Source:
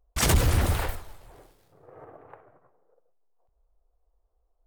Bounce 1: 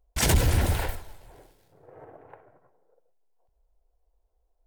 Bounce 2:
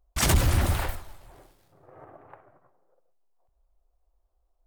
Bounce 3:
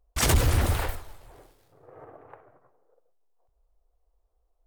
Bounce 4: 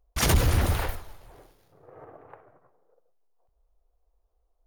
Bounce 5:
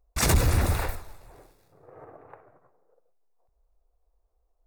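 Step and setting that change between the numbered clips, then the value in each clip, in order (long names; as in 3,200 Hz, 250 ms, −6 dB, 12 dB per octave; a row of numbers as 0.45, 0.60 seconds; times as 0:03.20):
notch filter, centre frequency: 1,200, 460, 180, 7,900, 3,100 Hertz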